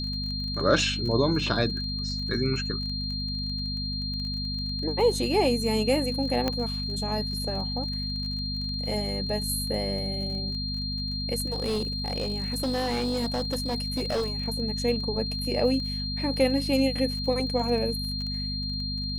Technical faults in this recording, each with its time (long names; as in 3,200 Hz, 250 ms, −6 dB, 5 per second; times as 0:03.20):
surface crackle 24 per second −34 dBFS
mains hum 50 Hz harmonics 5 −33 dBFS
whistle 4,200 Hz −32 dBFS
0:06.48: click −12 dBFS
0:11.50–0:14.34: clipping −23.5 dBFS